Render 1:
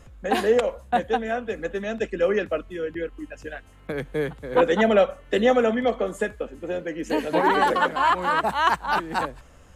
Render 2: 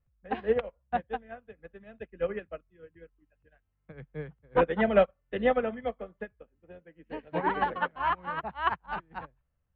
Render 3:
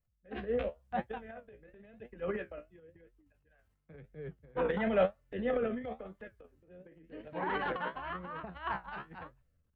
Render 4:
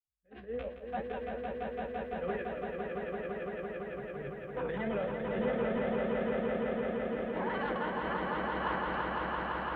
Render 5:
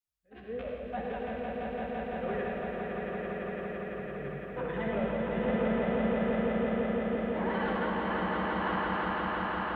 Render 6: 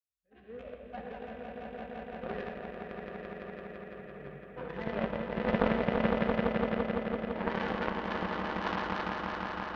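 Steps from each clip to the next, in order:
LPF 2900 Hz 24 dB/oct; resonant low shelf 200 Hz +7 dB, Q 1.5; upward expander 2.5:1, over -36 dBFS; gain -1.5 dB
flange 0.96 Hz, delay 8 ms, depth 9 ms, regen +55%; rotary speaker horn 0.75 Hz; transient shaper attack -4 dB, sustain +11 dB
opening faded in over 1.08 s; limiter -28 dBFS, peak gain reduction 10.5 dB; on a send: swelling echo 0.169 s, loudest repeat 5, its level -4 dB
reverb RT60 1.4 s, pre-delay 56 ms, DRR 0.5 dB
added harmonics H 3 -11 dB, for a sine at -17.5 dBFS; gain +7 dB

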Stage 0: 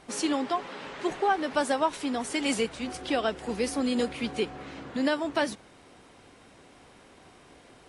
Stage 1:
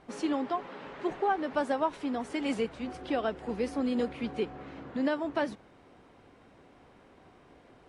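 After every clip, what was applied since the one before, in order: LPF 1500 Hz 6 dB/oct; gain -2 dB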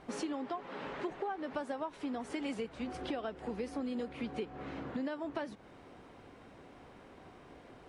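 compressor 6:1, threshold -38 dBFS, peak gain reduction 14 dB; gain +2.5 dB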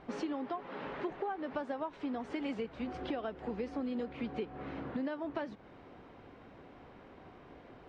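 air absorption 150 m; gain +1 dB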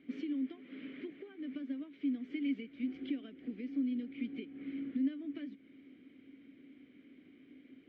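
vowel filter i; gain +6.5 dB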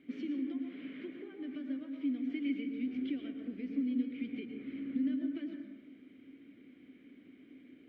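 reverb RT60 1.0 s, pre-delay 0.102 s, DRR 3.5 dB

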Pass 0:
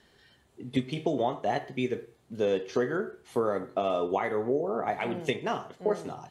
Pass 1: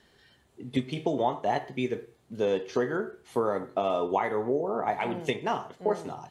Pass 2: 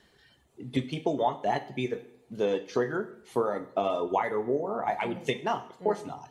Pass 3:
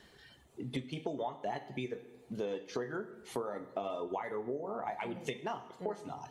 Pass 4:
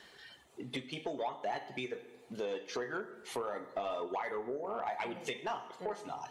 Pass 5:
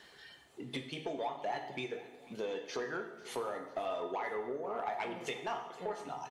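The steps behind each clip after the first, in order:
dynamic EQ 910 Hz, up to +7 dB, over -49 dBFS, Q 4.6
reverb removal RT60 0.68 s; two-slope reverb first 0.65 s, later 2.5 s, from -26 dB, DRR 10 dB
compressor 3:1, threshold -41 dBFS, peak gain reduction 15 dB; gain +2.5 dB
overdrive pedal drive 15 dB, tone 7500 Hz, clips at -20 dBFS; gain -4.5 dB
feedback echo 0.494 s, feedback 53%, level -20 dB; plate-style reverb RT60 0.9 s, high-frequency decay 0.9×, DRR 7 dB; gain -1 dB

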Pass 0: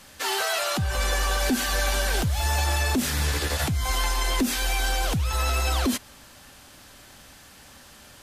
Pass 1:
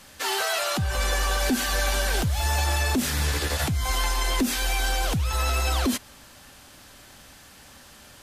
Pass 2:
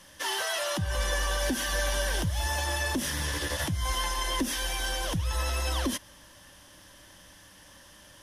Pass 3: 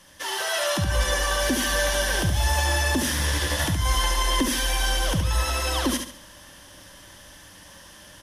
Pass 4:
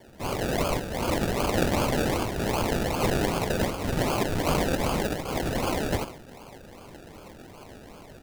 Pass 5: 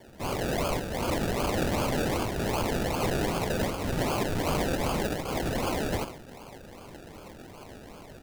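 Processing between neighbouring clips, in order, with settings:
nothing audible
ripple EQ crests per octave 1.2, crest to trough 8 dB; gain -5 dB
feedback echo 70 ms, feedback 34%, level -6 dB; AGC gain up to 5 dB
RIAA curve recording; decimation with a swept rate 33×, swing 60% 2.6 Hz; gain -6.5 dB
soft clip -21.5 dBFS, distortion -15 dB

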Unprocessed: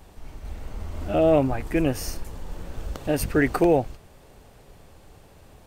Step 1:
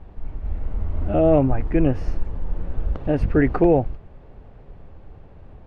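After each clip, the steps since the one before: LPF 2500 Hz 12 dB/oct; tilt -2 dB/oct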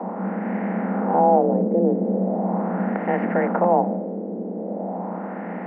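per-bin compression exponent 0.4; frequency shift +180 Hz; LFO low-pass sine 0.4 Hz 410–1900 Hz; gain -9 dB

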